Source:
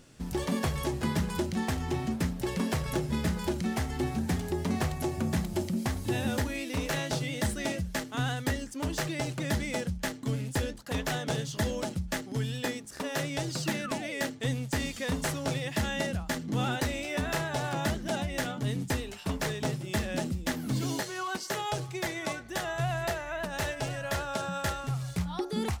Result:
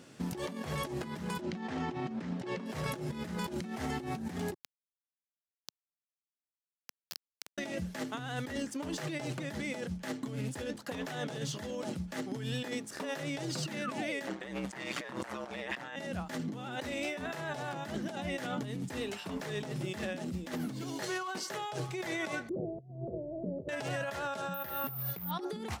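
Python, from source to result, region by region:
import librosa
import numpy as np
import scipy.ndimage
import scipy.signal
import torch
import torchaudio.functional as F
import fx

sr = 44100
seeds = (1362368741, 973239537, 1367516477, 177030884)

y = fx.chain(x, sr, fx.highpass(hz=120.0, slope=12),
    fx.air_absorb(metres=110.0), at=(1.41, 2.66))
y = fx.chain(y, sr, fx.ladder_bandpass(hz=5100.0, resonance_pct=75),
    fx.tilt_eq(slope=-2.5),
    fx.quant_companded(bits=2), at=(4.54, 7.58))
y = fx.chain(y, sr, fx.ring_mod(carrier_hz=63.0),
    fx.peak_eq(hz=1200.0, db=13.5, octaves=2.7), at=(14.27, 15.96))
y = fx.chain(y, sr, fx.steep_lowpass(hz=540.0, slope=48),
    fx.over_compress(threshold_db=-39.0, ratio=-0.5), at=(22.49, 23.69))
y = fx.chain(y, sr, fx.air_absorb(metres=100.0),
    fx.resample_bad(factor=3, down='filtered', up='zero_stuff'), at=(24.54, 25.31))
y = scipy.signal.sosfilt(scipy.signal.butter(2, 160.0, 'highpass', fs=sr, output='sos'), y)
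y = fx.high_shelf(y, sr, hz=4300.0, db=-6.0)
y = fx.over_compress(y, sr, threshold_db=-38.0, ratio=-1.0)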